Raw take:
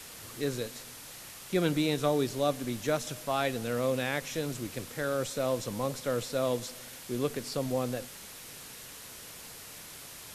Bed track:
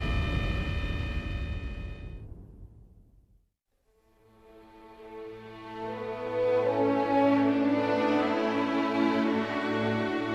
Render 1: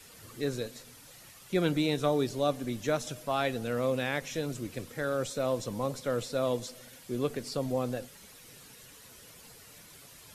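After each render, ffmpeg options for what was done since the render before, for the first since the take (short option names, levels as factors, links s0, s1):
-af "afftdn=nr=9:nf=-47"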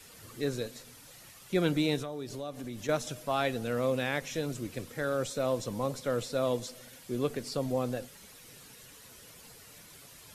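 -filter_complex "[0:a]asettb=1/sr,asplit=3[s0][s1][s2];[s0]atrim=end=2.024[s3];[s1]atrim=start=2.02:end=2.89,asetpts=PTS-STARTPTS,afade=t=in:d=0.004:c=qsin,afade=t=out:st=0.866:d=0.004:c=qsin,acompressor=threshold=0.0158:ratio=4:attack=3.2:release=140:knee=1:detection=peak[s4];[s2]atrim=start=2.886[s5];[s3][s4]acrossfade=d=0.004:c1=hsin:c2=qsin[s6];[s6][s5]acrossfade=d=0.004:c1=qsin:c2=hsin"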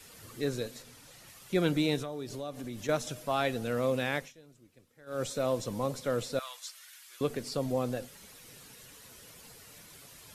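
-filter_complex "[0:a]asettb=1/sr,asplit=3[s0][s1][s2];[s0]atrim=end=0.824[s3];[s1]atrim=start=0.82:end=1.28,asetpts=PTS-STARTPTS,afade=t=in:d=0.004:c=qsin,afade=t=out:st=0.456:d=0.004:c=qsin,highshelf=f=12000:g=-8.5[s4];[s2]atrim=start=1.276[s5];[s3][s4]acrossfade=d=0.004:c1=hsin:c2=qsin[s6];[s6][s5]acrossfade=d=0.004:c1=qsin:c2=hsin,asettb=1/sr,asplit=3[s7][s8][s9];[s7]atrim=end=6.394[s10];[s8]atrim=start=6.39:end=7.21,asetpts=PTS-STARTPTS,afade=t=in:d=0.004:c=qsin,afade=t=out:st=0.816:d=0.004:c=qsin,highpass=f=1200:w=0.5412,highpass=f=1200:w=1.3066[s11];[s9]atrim=start=7.206[s12];[s10][s11]acrossfade=d=0.004:c1=hsin:c2=qsin[s13];[s13][s12]acrossfade=d=0.004:c1=qsin:c2=hsin,asplit=3[s14][s15][s16];[s14]atrim=end=4.33,asetpts=PTS-STARTPTS,afade=t=out:st=4.16:d=0.17:silence=0.0749894[s17];[s15]atrim=start=4.33:end=5.06,asetpts=PTS-STARTPTS,volume=0.075[s18];[s16]atrim=start=5.06,asetpts=PTS-STARTPTS,afade=t=in:d=0.17:silence=0.0749894[s19];[s17][s18][s19]concat=n=3:v=0:a=1"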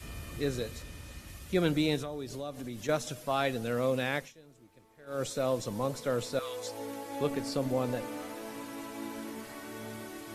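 -filter_complex "[1:a]volume=0.188[s0];[0:a][s0]amix=inputs=2:normalize=0"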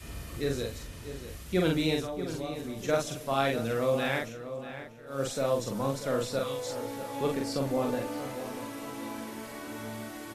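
-filter_complex "[0:a]asplit=2[s0][s1];[s1]adelay=44,volume=0.75[s2];[s0][s2]amix=inputs=2:normalize=0,asplit=2[s3][s4];[s4]adelay=639,lowpass=f=2800:p=1,volume=0.282,asplit=2[s5][s6];[s6]adelay=639,lowpass=f=2800:p=1,volume=0.36,asplit=2[s7][s8];[s8]adelay=639,lowpass=f=2800:p=1,volume=0.36,asplit=2[s9][s10];[s10]adelay=639,lowpass=f=2800:p=1,volume=0.36[s11];[s3][s5][s7][s9][s11]amix=inputs=5:normalize=0"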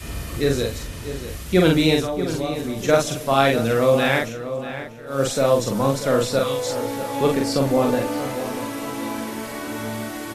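-af "volume=3.35"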